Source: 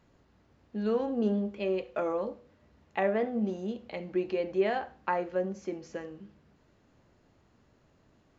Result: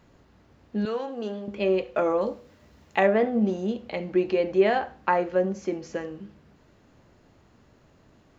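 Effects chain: 0.85–1.48 HPF 1100 Hz 6 dB/oct; 2.21–3.07 high shelf 4000 Hz +10 dB; gain +7 dB

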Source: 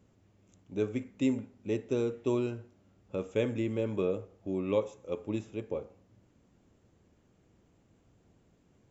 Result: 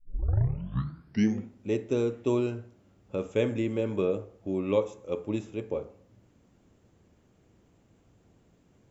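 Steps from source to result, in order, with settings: tape start at the beginning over 1.53 s; on a send: reverb RT60 0.50 s, pre-delay 28 ms, DRR 16.5 dB; on the sum: gain +3 dB

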